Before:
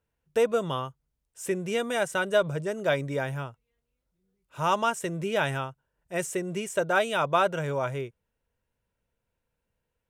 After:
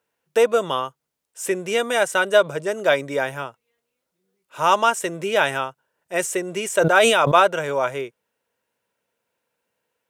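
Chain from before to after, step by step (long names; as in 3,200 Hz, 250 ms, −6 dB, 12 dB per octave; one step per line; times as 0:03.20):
Bessel high-pass filter 370 Hz, order 2
0:06.60–0:07.40: level that may fall only so fast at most 28 dB per second
level +8.5 dB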